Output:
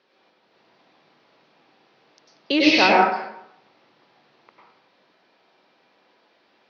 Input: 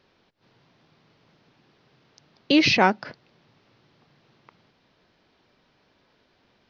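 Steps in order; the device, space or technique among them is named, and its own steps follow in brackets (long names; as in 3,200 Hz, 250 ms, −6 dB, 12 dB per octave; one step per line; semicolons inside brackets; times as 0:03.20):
supermarket ceiling speaker (band-pass filter 310–6,000 Hz; convolution reverb RT60 0.75 s, pre-delay 92 ms, DRR −4 dB)
level −1 dB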